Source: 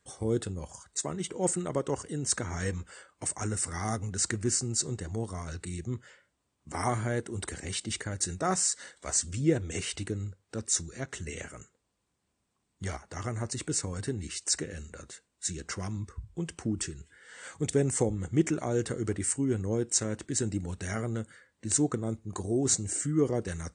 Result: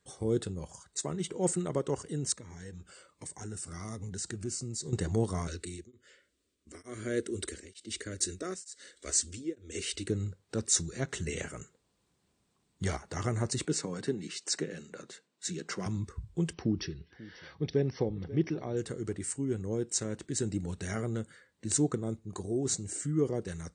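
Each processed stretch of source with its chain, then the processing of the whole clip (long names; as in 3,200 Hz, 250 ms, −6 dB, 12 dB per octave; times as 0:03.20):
0:02.32–0:04.93: downward compressor 2 to 1, threshold −49 dBFS + phaser whose notches keep moving one way falling 1.3 Hz
0:05.47–0:10.08: phaser with its sweep stopped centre 350 Hz, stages 4 + tremolo along a rectified sine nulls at 1.1 Hz
0:13.65–0:15.86: high-pass filter 160 Hz 24 dB per octave + high-frequency loss of the air 57 metres
0:16.53–0:18.77: linear-phase brick-wall low-pass 5,900 Hz + notch filter 1,400 Hz, Q 9.7 + single-tap delay 540 ms −16 dB
whole clip: graphic EQ with 15 bands 160 Hz +5 dB, 400 Hz +4 dB, 4,000 Hz +4 dB; speech leveller 2 s; level −4 dB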